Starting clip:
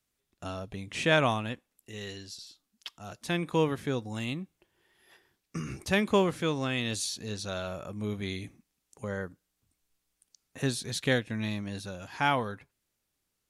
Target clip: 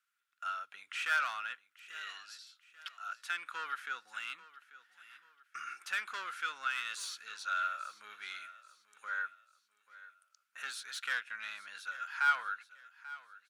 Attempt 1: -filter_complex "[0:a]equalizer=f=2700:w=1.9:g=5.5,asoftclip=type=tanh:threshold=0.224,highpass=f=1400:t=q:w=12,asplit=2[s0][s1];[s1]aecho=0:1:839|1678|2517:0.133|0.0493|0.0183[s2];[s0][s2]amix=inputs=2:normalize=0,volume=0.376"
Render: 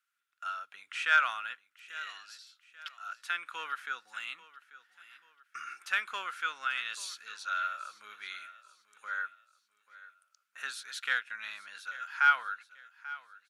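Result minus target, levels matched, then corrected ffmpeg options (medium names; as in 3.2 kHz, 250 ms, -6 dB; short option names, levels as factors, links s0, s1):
saturation: distortion -13 dB
-filter_complex "[0:a]equalizer=f=2700:w=1.9:g=5.5,asoftclip=type=tanh:threshold=0.0562,highpass=f=1400:t=q:w=12,asplit=2[s0][s1];[s1]aecho=0:1:839|1678|2517:0.133|0.0493|0.0183[s2];[s0][s2]amix=inputs=2:normalize=0,volume=0.376"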